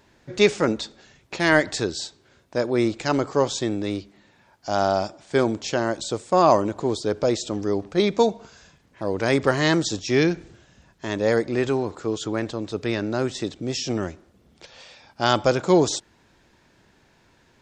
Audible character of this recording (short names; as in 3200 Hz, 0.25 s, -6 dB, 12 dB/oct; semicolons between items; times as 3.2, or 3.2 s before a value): noise floor -60 dBFS; spectral tilt -5.0 dB/oct